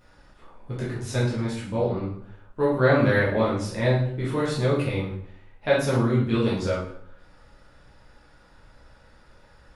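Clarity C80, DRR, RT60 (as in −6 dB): 8.0 dB, −8.0 dB, 0.65 s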